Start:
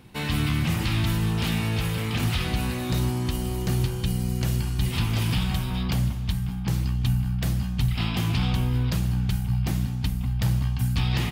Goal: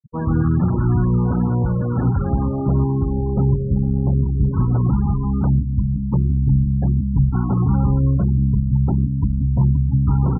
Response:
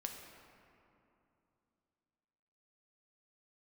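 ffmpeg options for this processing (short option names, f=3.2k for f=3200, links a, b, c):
-af "lowpass=f=1.4k:w=0.5412,lowpass=f=1.4k:w=1.3066,afftfilt=real='re*gte(hypot(re,im),0.0355)':imag='im*gte(hypot(re,im),0.0355)':win_size=1024:overlap=0.75,asetrate=48000,aresample=44100,volume=7.5dB"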